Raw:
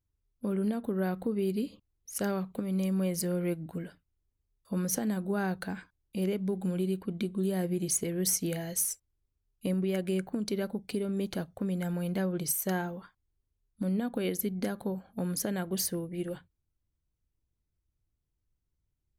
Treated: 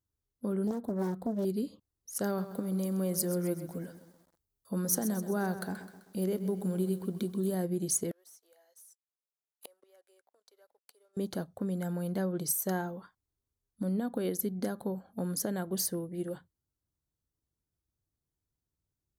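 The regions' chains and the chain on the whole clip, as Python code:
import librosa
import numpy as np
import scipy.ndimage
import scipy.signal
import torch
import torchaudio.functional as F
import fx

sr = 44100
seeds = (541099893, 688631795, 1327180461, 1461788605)

y = fx.chain(x, sr, fx.peak_eq(hz=1700.0, db=-3.5, octaves=2.6),
    fx.doppler_dist(depth_ms=0.66), at=(0.67, 1.45))
y = fx.chain(y, sr, fx.high_shelf(hz=11000.0, db=8.5),
    fx.echo_crushed(ms=129, feedback_pct=55, bits=9, wet_db=-12.0), at=(2.25, 7.55))
y = fx.chain(y, sr, fx.cheby2_highpass(hz=200.0, order=4, stop_db=50),
    fx.leveller(passes=3),
    fx.gate_flip(shuts_db=-30.0, range_db=-34), at=(8.11, 11.17))
y = fx.highpass(y, sr, hz=130.0, slope=6)
y = fx.peak_eq(y, sr, hz=2500.0, db=-12.5, octaves=0.71)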